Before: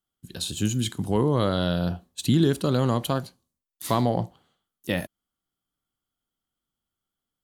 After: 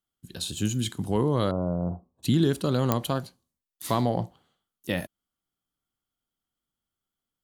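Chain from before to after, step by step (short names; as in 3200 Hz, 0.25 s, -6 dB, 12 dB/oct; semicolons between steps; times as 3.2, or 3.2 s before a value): 1.51–2.23 elliptic low-pass 1100 Hz, stop band 50 dB; pops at 2.92, -6 dBFS; gain -2 dB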